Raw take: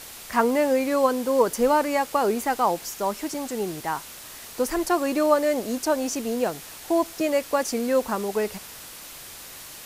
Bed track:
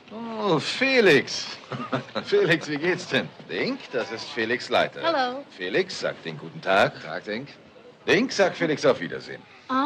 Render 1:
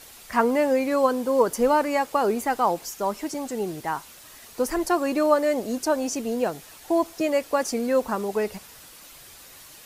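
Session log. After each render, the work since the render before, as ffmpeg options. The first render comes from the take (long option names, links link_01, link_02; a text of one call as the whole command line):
ffmpeg -i in.wav -af "afftdn=noise_reduction=7:noise_floor=-42" out.wav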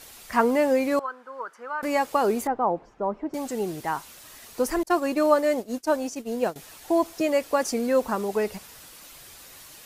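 ffmpeg -i in.wav -filter_complex "[0:a]asettb=1/sr,asplit=3[link_01][link_02][link_03];[link_01]atrim=end=0.994[link_04];[link_02]atrim=start=0.99:end=1.83,asetpts=PTS-STARTPTS,afade=type=in:duration=0.004:curve=qsin,afade=type=out:start_time=0.836:duration=0.004:curve=qsin,bandpass=frequency=1400:width_type=q:width=4.1[link_05];[link_03]atrim=start=1.826[link_06];[link_04][link_05]acrossfade=duration=0.004:curve1=hsin:curve2=qsin[link_07];[link_07][link_06]acrossfade=duration=0.004:curve1=qsin:curve2=hsin,asettb=1/sr,asplit=3[link_08][link_09][link_10];[link_08]atrim=end=2.474[link_11];[link_09]atrim=start=2.47:end=3.34,asetpts=PTS-STARTPTS,afade=type=in:duration=0.004:curve=qsin,afade=type=out:start_time=0.866:duration=0.004:curve=qsin,lowpass=1000[link_12];[link_10]atrim=start=3.336[link_13];[link_11][link_12]acrossfade=duration=0.004:curve1=hsin:curve2=qsin[link_14];[link_14][link_13]acrossfade=duration=0.004:curve1=qsin:curve2=hsin,asettb=1/sr,asplit=3[link_15][link_16][link_17];[link_15]atrim=end=4.834[link_18];[link_16]atrim=start=4.83:end=6.56,asetpts=PTS-STARTPTS,afade=type=in:duration=0.004:curve=qsin,afade=type=out:start_time=1.726:duration=0.004:curve=qsin,agate=range=-33dB:threshold=-24dB:ratio=3:release=100:detection=peak[link_19];[link_17]atrim=start=6.556[link_20];[link_18][link_19]acrossfade=duration=0.004:curve1=hsin:curve2=qsin[link_21];[link_21][link_20]acrossfade=duration=0.004:curve1=qsin:curve2=hsin" out.wav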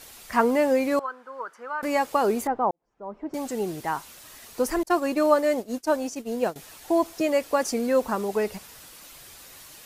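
ffmpeg -i in.wav -filter_complex "[0:a]asplit=2[link_01][link_02];[link_01]atrim=end=2.71,asetpts=PTS-STARTPTS,afade=type=out:start_time=2.706:duration=0.004:curve=hsin[link_03];[link_02]atrim=start=2.71,asetpts=PTS-STARTPTS,afade=type=in:duration=0.63:curve=qua[link_04];[link_03][link_04]concat=n=2:v=0:a=1" out.wav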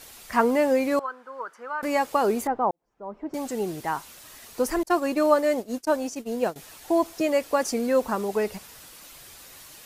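ffmpeg -i in.wav -filter_complex "[0:a]asettb=1/sr,asplit=3[link_01][link_02][link_03];[link_01]atrim=end=5.854[link_04];[link_02]atrim=start=5.85:end=6.58,asetpts=PTS-STARTPTS,afade=type=in:duration=0.004:curve=qsin,afade=type=out:start_time=0.726:duration=0.004:curve=qsin,agate=range=-33dB:threshold=-40dB:ratio=3:release=100:detection=peak[link_05];[link_03]atrim=start=6.576[link_06];[link_04][link_05]acrossfade=duration=0.004:curve1=hsin:curve2=qsin[link_07];[link_07][link_06]acrossfade=duration=0.004:curve1=qsin:curve2=hsin" out.wav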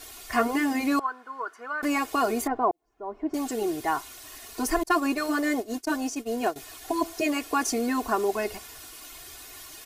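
ffmpeg -i in.wav -af "afftfilt=real='re*lt(hypot(re,im),0.631)':imag='im*lt(hypot(re,im),0.631)':win_size=1024:overlap=0.75,aecho=1:1:2.8:0.82" out.wav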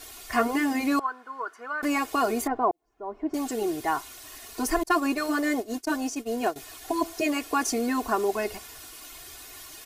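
ffmpeg -i in.wav -af anull out.wav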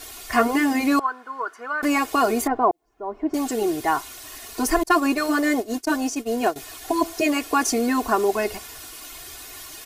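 ffmpeg -i in.wav -af "volume=5dB" out.wav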